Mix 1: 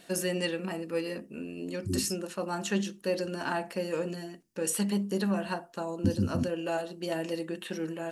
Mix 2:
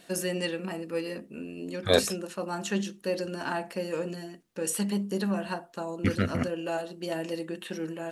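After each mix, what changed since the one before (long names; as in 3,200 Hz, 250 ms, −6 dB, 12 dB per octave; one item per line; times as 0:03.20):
second voice: remove linear-phase brick-wall band-stop 390–4,600 Hz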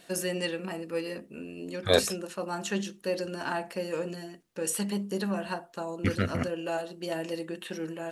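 master: add parametric band 230 Hz −3 dB 0.92 octaves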